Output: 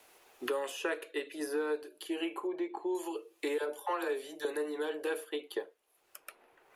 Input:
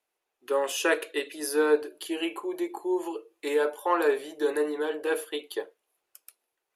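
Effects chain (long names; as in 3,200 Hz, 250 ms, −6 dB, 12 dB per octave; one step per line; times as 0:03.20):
0:02.47–0:02.95: low-pass filter 2,400 Hz 12 dB per octave
0:03.58–0:04.45: all-pass dispersion lows, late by 59 ms, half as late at 450 Hz
multiband upward and downward compressor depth 100%
level −8.5 dB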